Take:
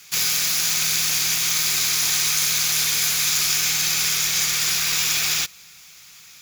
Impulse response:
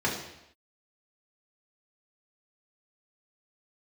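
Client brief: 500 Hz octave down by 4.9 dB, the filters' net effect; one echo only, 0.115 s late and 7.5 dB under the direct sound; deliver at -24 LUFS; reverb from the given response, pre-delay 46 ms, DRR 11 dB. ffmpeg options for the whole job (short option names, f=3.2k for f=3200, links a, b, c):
-filter_complex "[0:a]equalizer=f=500:t=o:g=-6.5,aecho=1:1:115:0.422,asplit=2[a][b];[1:a]atrim=start_sample=2205,adelay=46[c];[b][c]afir=irnorm=-1:irlink=0,volume=-22dB[d];[a][d]amix=inputs=2:normalize=0,volume=-6.5dB"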